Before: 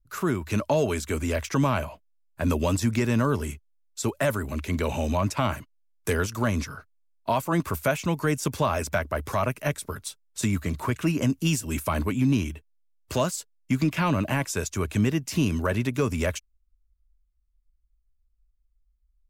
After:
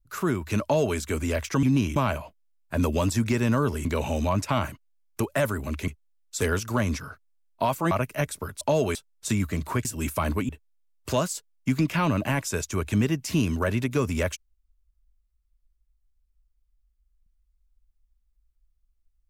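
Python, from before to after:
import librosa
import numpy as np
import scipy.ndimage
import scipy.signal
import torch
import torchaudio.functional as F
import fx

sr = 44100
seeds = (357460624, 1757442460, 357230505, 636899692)

y = fx.edit(x, sr, fx.duplicate(start_s=0.63, length_s=0.34, to_s=10.08),
    fx.swap(start_s=3.52, length_s=0.53, other_s=4.73, other_length_s=1.35),
    fx.cut(start_s=7.58, length_s=1.8),
    fx.cut(start_s=10.98, length_s=0.57),
    fx.move(start_s=12.19, length_s=0.33, to_s=1.63), tone=tone)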